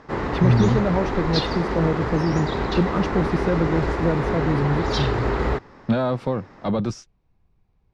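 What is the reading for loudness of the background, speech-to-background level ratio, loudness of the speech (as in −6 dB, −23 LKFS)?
−25.0 LKFS, 1.5 dB, −23.5 LKFS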